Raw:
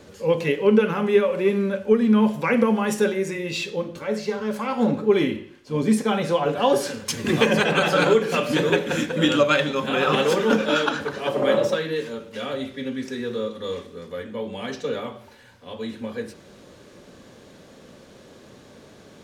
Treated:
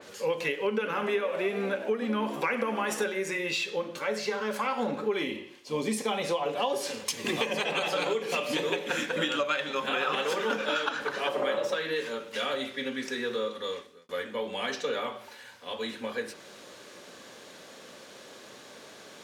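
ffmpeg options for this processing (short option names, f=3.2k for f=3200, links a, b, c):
-filter_complex "[0:a]asettb=1/sr,asplit=3[a][b][c];[a]atrim=end=0.754[d];[b]atrim=start=0.75:end=3.04,asetpts=PTS-STARTPTS,afade=t=in:d=0.004:c=qsin,afade=t=out:st=2.286:d=0.004:c=qsin,asplit=7[e][f][g][h][i][j][k];[f]adelay=97,afreqshift=63,volume=-15.5dB[l];[g]adelay=194,afreqshift=126,volume=-19.9dB[m];[h]adelay=291,afreqshift=189,volume=-24.4dB[n];[i]adelay=388,afreqshift=252,volume=-28.8dB[o];[j]adelay=485,afreqshift=315,volume=-33.2dB[p];[k]adelay=582,afreqshift=378,volume=-37.7dB[q];[e][l][m][n][o][p][q]amix=inputs=7:normalize=0,atrim=end_sample=100989[r];[c]atrim=start=3.036[s];[d][r]acrossfade=d=0.004:c1=hsin:c2=qsin[t];[t][s]acrossfade=d=0.004:c1=qsin:c2=hsin,asettb=1/sr,asplit=3[u][v][w];[u]atrim=end=5.234[x];[v]atrim=start=5.23:end=8.89,asetpts=PTS-STARTPTS,afade=t=in:d=0.004:c=qsin,afade=t=out:st=3.656:d=0.004:c=qsin,equalizer=f=1.5k:w=3.2:g=-11[y];[w]atrim=start=8.886[z];[x][y]acrossfade=d=0.004:c1=hsin:c2=qsin[aa];[aa][z]acrossfade=d=0.004:c1=qsin:c2=hsin,asplit=2[ab][ac];[ab]atrim=end=14.09,asetpts=PTS-STARTPTS,afade=t=out:st=13.49:d=0.6[ad];[ac]atrim=start=14.09,asetpts=PTS-STARTPTS,afade=t=in:d=0.004:c=hsin[ae];[ad][ae]concat=n=2:v=0:a=1,highpass=f=950:p=1,acompressor=threshold=-31dB:ratio=5,adynamicequalizer=threshold=0.00316:dfrequency=3400:dqfactor=0.7:tfrequency=3400:tqfactor=0.7:attack=5:release=100:ratio=0.375:range=2:mode=cutabove:tftype=highshelf,volume=5dB"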